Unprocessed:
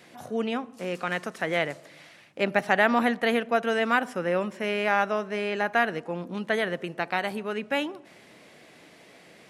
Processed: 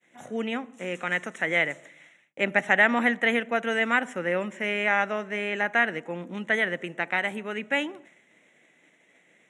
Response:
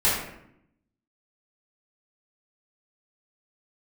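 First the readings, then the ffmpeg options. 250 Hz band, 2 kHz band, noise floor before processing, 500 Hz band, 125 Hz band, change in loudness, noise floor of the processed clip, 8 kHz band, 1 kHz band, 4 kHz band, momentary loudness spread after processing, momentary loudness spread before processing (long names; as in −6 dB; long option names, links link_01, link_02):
−1.0 dB, +4.0 dB, −53 dBFS, −2.5 dB, −2.0 dB, +1.0 dB, −63 dBFS, 0.0 dB, −2.5 dB, 0.0 dB, 12 LU, 10 LU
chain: -af "asuperstop=centerf=4700:order=4:qfactor=2.1,agate=range=-33dB:threshold=-44dB:ratio=3:detection=peak,highpass=160,equalizer=frequency=420:width_type=q:width=4:gain=-3,equalizer=frequency=700:width_type=q:width=4:gain=-3,equalizer=frequency=1100:width_type=q:width=4:gain=-5,equalizer=frequency=2000:width_type=q:width=4:gain=8,equalizer=frequency=7300:width_type=q:width=4:gain=5,lowpass=frequency=9600:width=0.5412,lowpass=frequency=9600:width=1.3066"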